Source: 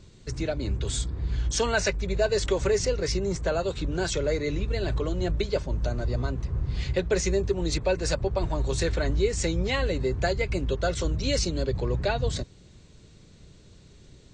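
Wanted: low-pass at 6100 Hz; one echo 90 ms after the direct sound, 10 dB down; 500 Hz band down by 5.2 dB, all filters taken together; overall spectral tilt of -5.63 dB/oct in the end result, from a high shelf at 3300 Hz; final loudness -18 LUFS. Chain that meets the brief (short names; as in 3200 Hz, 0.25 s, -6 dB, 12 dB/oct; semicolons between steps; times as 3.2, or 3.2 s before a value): LPF 6100 Hz; bell 500 Hz -6.5 dB; high shelf 3300 Hz -5 dB; echo 90 ms -10 dB; gain +11.5 dB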